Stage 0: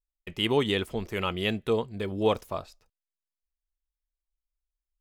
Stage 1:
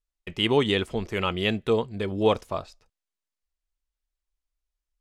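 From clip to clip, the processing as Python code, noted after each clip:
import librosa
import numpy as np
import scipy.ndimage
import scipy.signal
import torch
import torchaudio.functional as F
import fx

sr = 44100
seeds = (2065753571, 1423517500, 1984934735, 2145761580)

y = scipy.signal.sosfilt(scipy.signal.butter(2, 8900.0, 'lowpass', fs=sr, output='sos'), x)
y = y * librosa.db_to_amplitude(3.0)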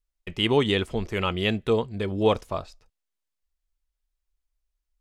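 y = fx.low_shelf(x, sr, hz=78.0, db=6.5)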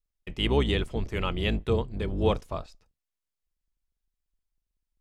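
y = fx.octave_divider(x, sr, octaves=2, level_db=3.0)
y = y * librosa.db_to_amplitude(-4.5)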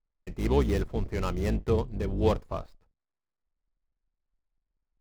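y = scipy.signal.medfilt(x, 15)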